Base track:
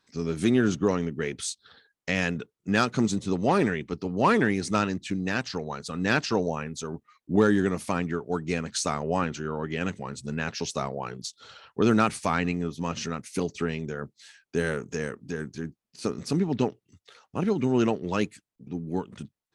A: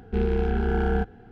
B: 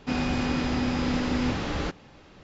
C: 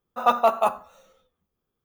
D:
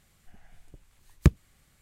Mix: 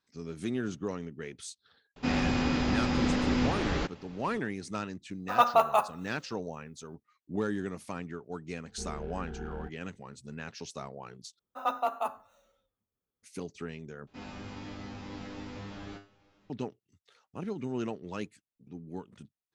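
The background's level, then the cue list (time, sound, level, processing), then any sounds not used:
base track -11 dB
1.96 s: add B -1.5 dB
5.12 s: add C -1.5 dB + bass shelf 400 Hz -10.5 dB
8.65 s: add A -17.5 dB
11.39 s: replace with C -11 dB + frequency shift +25 Hz
14.07 s: replace with B -6 dB + feedback comb 100 Hz, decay 0.35 s, mix 90%
not used: D

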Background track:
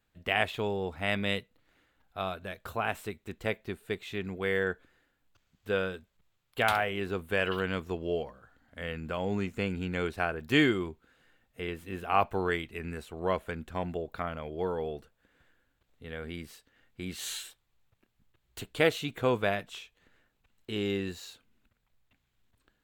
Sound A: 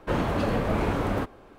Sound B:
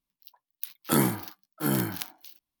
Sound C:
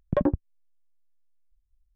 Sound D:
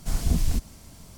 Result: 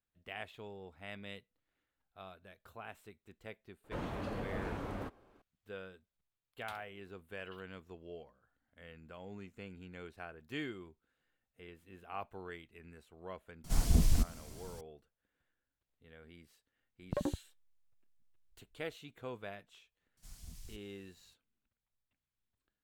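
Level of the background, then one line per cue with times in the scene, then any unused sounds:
background track -17 dB
3.84 s: add A -14.5 dB
13.64 s: add D -4 dB
17.00 s: add C -4 dB + compression 3:1, threshold -29 dBFS
20.17 s: add D -14 dB + amplifier tone stack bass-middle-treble 5-5-5
not used: B

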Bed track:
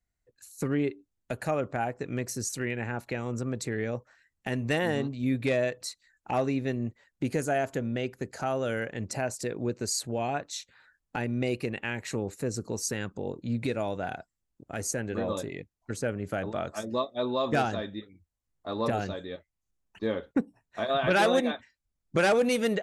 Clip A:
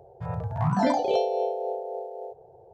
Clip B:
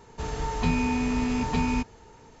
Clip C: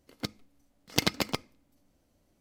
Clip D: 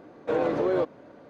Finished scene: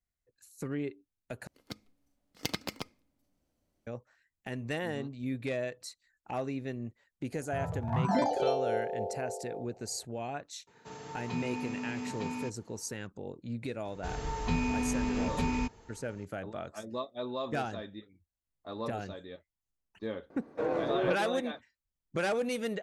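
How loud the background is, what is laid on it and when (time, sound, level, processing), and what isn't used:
bed track -7.5 dB
1.47 s: replace with C -8.5 dB
7.32 s: add A -5 dB
10.67 s: add B -11 dB + high-pass 130 Hz 24 dB/octave
13.85 s: add B -5.5 dB
20.30 s: add D -6 dB + peaking EQ 3.2 kHz -5 dB 0.56 oct

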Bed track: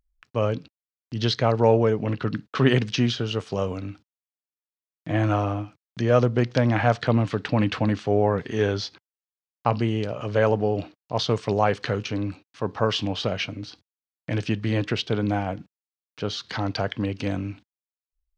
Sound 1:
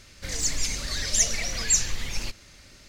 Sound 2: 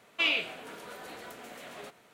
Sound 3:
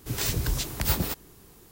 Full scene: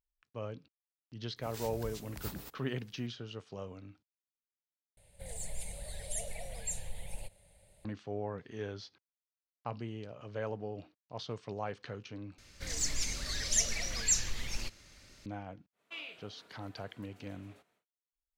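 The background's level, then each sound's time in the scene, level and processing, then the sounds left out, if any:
bed track -17.5 dB
1.36 s: add 3 -17.5 dB
4.97 s: replace with 1 -10.5 dB + FFT filter 190 Hz 0 dB, 270 Hz -19 dB, 550 Hz +7 dB, 840 Hz +3 dB, 1.2 kHz -18 dB, 2 kHz -8 dB, 3.8 kHz -8 dB, 5.7 kHz -24 dB, 9.2 kHz +11 dB, 14 kHz -4 dB
12.38 s: replace with 1 -7 dB
15.72 s: add 2 -17.5 dB, fades 0.10 s

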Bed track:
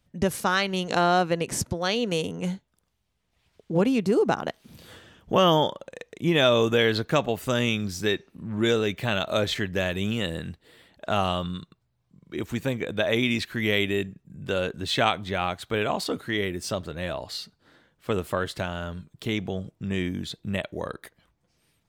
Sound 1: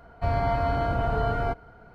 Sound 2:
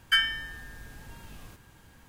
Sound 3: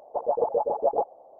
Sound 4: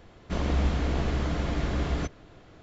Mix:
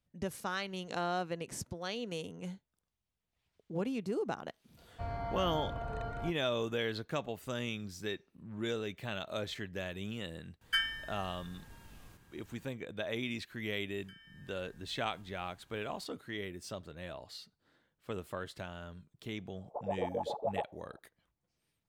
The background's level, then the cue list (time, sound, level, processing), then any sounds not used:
bed track -13.5 dB
4.77 s: add 1 -14 dB
10.61 s: add 2 -8 dB
13.97 s: add 2 -11.5 dB + compression 4:1, threshold -48 dBFS
19.60 s: add 3 -12 dB + peaking EQ 1.2 kHz +4.5 dB 0.73 oct
not used: 4

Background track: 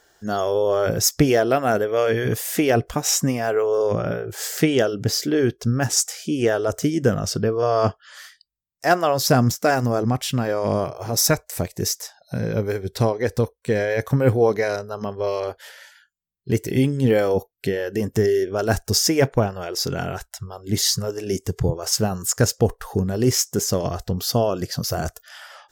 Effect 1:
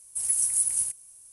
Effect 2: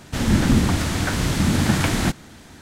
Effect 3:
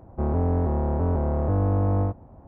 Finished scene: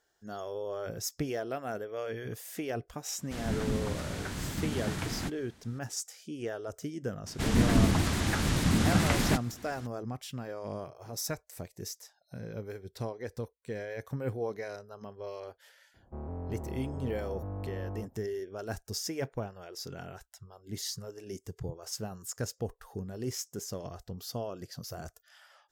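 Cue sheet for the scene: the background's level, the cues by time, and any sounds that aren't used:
background track -17 dB
3.18 s: add 2 -15 dB
7.26 s: add 2 -6.5 dB + vibrato with a chosen wave square 6.9 Hz, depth 160 cents
15.94 s: add 3 -16 dB
not used: 1

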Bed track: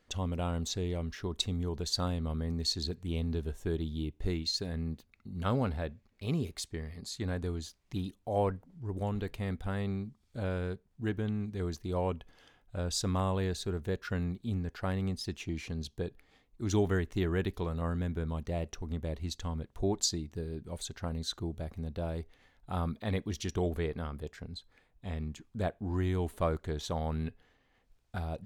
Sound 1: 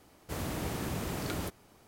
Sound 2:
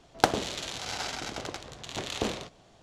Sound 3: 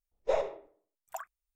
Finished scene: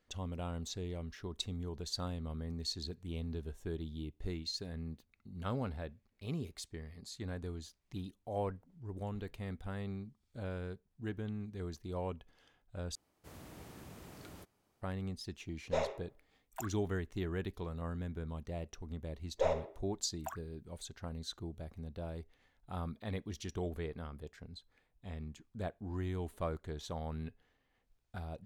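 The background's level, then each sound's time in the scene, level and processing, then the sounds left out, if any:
bed track -7 dB
12.95 s: replace with 1 -16.5 dB
15.44 s: add 3 -3 dB + tilt shelf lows -4 dB, about 1.2 kHz
19.12 s: add 3 -3 dB
not used: 2

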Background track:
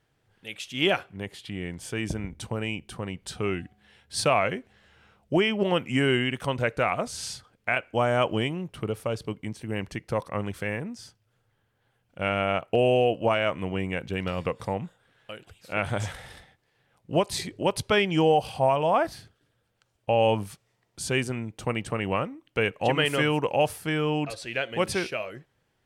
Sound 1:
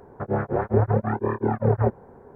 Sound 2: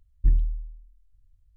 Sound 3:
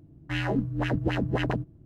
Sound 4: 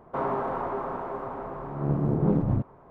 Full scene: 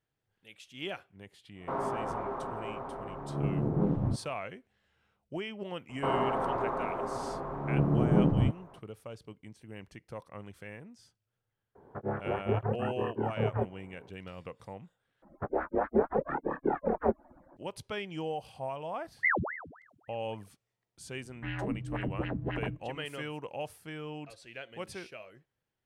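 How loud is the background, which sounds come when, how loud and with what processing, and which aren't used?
background track -15 dB
1.54 s: add 4 -5 dB, fades 0.10 s
5.89 s: add 4 -1 dB
11.75 s: add 1 -8.5 dB + bass shelf 72 Hz -8 dB
15.22 s: replace with 1 -3.5 dB + harmonic-percussive separation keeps percussive
18.99 s: add 2 -7.5 dB + ring modulator with a swept carrier 1.1 kHz, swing 90%, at 3.6 Hz
21.13 s: add 3 -7.5 dB + low-pass 2.9 kHz 24 dB/octave

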